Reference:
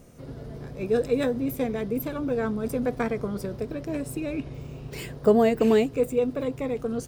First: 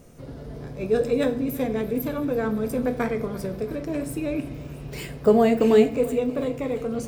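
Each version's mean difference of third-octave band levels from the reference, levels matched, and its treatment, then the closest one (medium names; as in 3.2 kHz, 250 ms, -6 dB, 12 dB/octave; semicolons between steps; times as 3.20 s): 2.0 dB: on a send: thinning echo 337 ms, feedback 82%, high-pass 420 Hz, level -19 dB; on the sum: simulated room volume 87 m³, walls mixed, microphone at 0.31 m; trim +1 dB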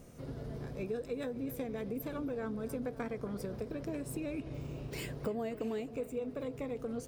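5.0 dB: compression 5:1, threshold -33 dBFS, peak gain reduction 17 dB; on a send: tape echo 267 ms, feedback 83%, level -14.5 dB, low-pass 2.1 kHz; on the sum: trim -3 dB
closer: first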